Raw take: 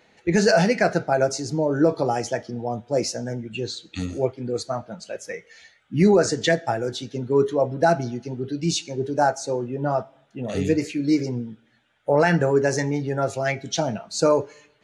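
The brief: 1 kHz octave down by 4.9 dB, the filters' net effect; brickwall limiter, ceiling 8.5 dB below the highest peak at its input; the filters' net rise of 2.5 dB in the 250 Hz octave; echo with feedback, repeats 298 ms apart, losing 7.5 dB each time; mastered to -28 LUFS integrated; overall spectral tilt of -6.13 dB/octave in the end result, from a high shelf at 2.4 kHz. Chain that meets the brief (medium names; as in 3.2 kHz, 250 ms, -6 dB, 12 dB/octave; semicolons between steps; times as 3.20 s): peaking EQ 250 Hz +4 dB; peaking EQ 1 kHz -7.5 dB; treble shelf 2.4 kHz -4 dB; peak limiter -14 dBFS; feedback delay 298 ms, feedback 42%, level -7.5 dB; trim -3 dB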